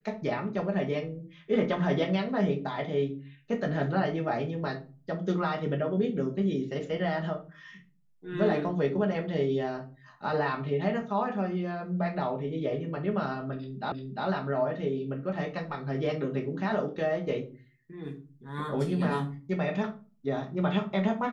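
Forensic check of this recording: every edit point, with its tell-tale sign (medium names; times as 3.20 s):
13.92 s: repeat of the last 0.35 s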